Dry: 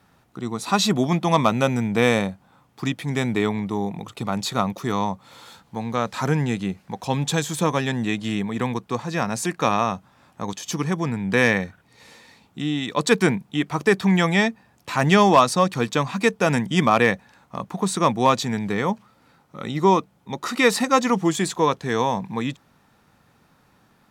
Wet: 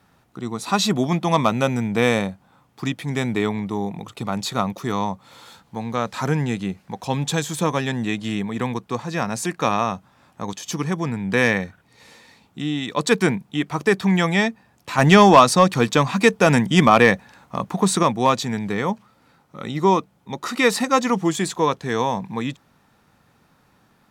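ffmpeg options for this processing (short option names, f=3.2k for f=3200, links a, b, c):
-filter_complex "[0:a]asettb=1/sr,asplit=3[a][b][c];[a]atrim=end=14.984[d];[b]atrim=start=14.98:end=18.03,asetpts=PTS-STARTPTS,afade=t=in:d=0.004:c=qsin,afade=t=out:st=3.046:d=0.004:c=qsin,acontrast=24[e];[c]atrim=start=18.026[f];[d][e]acrossfade=d=0.004:c1=hsin:c2=qsin[g];[g][f]acrossfade=d=0.004:c1=qsin:c2=hsin"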